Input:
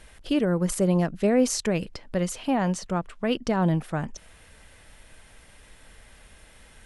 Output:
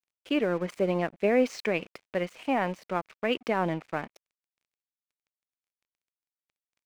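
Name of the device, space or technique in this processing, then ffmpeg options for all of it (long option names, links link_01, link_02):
pocket radio on a weak battery: -af "highpass=300,lowpass=3200,aeval=exprs='sgn(val(0))*max(abs(val(0))-0.00447,0)':channel_layout=same,equalizer=frequency=2300:width_type=o:width=0.44:gain=7.5"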